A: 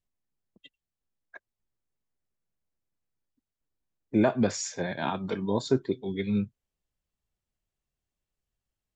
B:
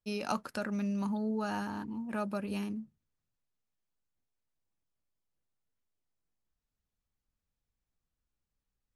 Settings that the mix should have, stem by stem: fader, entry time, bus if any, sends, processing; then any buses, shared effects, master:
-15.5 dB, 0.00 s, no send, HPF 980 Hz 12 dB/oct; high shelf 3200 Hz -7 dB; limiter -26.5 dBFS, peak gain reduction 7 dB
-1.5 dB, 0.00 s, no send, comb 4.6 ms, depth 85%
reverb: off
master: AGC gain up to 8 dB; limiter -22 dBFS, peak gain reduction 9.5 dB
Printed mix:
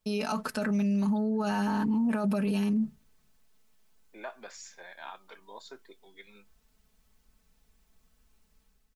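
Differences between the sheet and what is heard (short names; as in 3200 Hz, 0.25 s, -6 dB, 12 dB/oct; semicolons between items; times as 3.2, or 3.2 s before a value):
stem A: missing limiter -26.5 dBFS, peak gain reduction 7 dB; stem B -1.5 dB -> +9.0 dB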